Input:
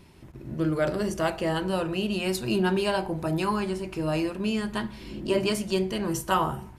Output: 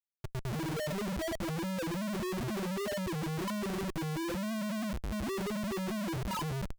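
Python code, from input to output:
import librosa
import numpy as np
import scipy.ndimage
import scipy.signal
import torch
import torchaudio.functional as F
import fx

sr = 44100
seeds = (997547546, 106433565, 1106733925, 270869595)

y = fx.low_shelf(x, sr, hz=450.0, db=8.5)
y = fx.spec_topn(y, sr, count=1)
y = fx.schmitt(y, sr, flips_db=-41.5)
y = y * 10.0 ** (-5.0 / 20.0)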